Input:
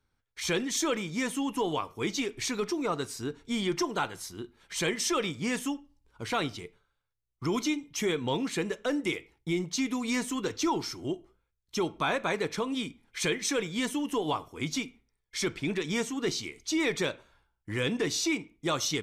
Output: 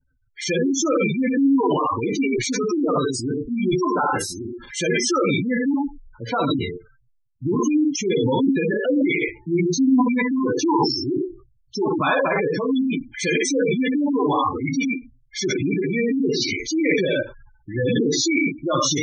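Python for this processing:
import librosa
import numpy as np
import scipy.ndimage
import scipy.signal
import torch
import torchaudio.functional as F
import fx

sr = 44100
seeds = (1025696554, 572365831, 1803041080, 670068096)

y = fx.rev_gated(x, sr, seeds[0], gate_ms=130, shape='flat', drr_db=-2.0)
y = fx.transient(y, sr, attack_db=-1, sustain_db=11)
y = fx.spec_gate(y, sr, threshold_db=-10, keep='strong')
y = F.gain(torch.from_numpy(y), 7.0).numpy()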